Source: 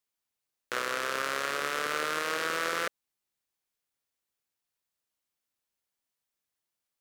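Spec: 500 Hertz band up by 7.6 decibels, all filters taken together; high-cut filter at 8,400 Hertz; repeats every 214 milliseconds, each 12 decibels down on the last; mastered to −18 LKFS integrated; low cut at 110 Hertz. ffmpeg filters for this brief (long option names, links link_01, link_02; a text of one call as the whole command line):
ffmpeg -i in.wav -af "highpass=110,lowpass=8400,equalizer=frequency=500:width_type=o:gain=8.5,aecho=1:1:214|428|642:0.251|0.0628|0.0157,volume=10.5dB" out.wav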